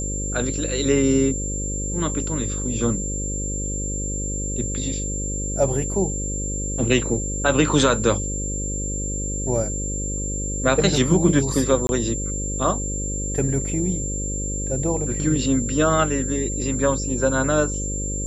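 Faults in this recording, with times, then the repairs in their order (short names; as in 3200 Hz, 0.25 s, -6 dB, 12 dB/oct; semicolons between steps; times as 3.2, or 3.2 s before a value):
buzz 50 Hz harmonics 11 -28 dBFS
tone 7300 Hz -28 dBFS
11.87–11.89 gap 21 ms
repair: notch 7300 Hz, Q 30; de-hum 50 Hz, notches 11; interpolate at 11.87, 21 ms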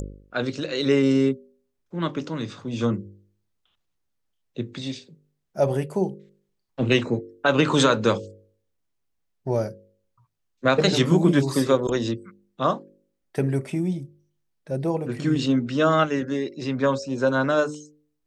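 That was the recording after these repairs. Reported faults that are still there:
none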